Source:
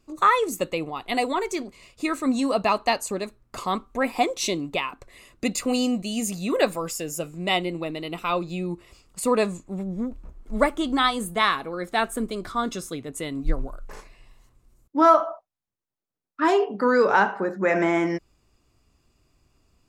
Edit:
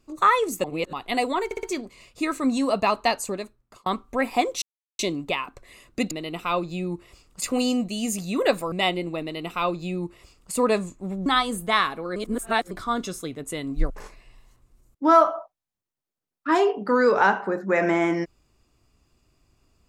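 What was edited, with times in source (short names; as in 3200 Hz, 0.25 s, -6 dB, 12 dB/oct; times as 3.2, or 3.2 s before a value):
0.64–0.93 reverse
1.45 stutter 0.06 s, 4 plays
3.08–3.68 fade out
4.44 insert silence 0.37 s
6.86–7.4 cut
7.9–9.21 copy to 5.56
9.94–10.94 cut
11.84–12.39 reverse
13.58–13.83 cut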